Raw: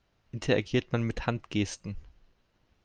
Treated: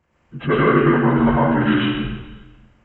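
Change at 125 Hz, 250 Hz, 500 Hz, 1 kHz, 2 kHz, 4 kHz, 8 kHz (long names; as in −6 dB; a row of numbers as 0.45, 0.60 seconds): +11.5 dB, +15.5 dB, +12.5 dB, +20.0 dB, +14.0 dB, +9.0 dB, below −25 dB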